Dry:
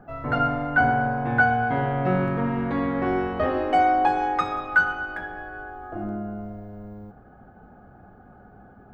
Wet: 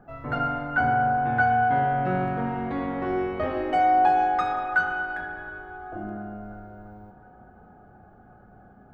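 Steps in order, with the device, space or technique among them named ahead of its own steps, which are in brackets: dub delay into a spring reverb (darkening echo 0.352 s, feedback 81%, low-pass 3400 Hz, level -24 dB; spring tank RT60 2.5 s, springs 35 ms, chirp 35 ms, DRR 6.5 dB); gain -4 dB

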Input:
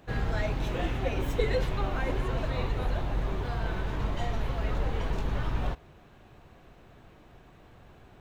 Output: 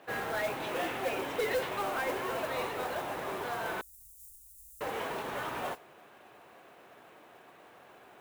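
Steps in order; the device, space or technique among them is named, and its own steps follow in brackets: HPF 51 Hz; carbon microphone (BPF 470–3400 Hz; soft clip -29.5 dBFS, distortion -15 dB; modulation noise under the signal 16 dB); 3.81–4.81 inverse Chebyshev band-stop 180–2600 Hz, stop band 60 dB; low shelf 150 Hz +5 dB; gain +4 dB

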